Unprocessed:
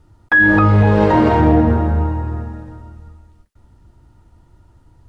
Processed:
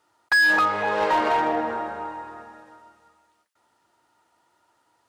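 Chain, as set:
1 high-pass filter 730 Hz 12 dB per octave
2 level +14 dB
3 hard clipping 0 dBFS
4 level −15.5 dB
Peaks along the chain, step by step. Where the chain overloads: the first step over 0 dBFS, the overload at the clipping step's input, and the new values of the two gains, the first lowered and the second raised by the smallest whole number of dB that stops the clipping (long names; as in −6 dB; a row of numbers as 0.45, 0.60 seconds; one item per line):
−6.0, +8.0, 0.0, −15.5 dBFS
step 2, 8.0 dB
step 2 +6 dB, step 4 −7.5 dB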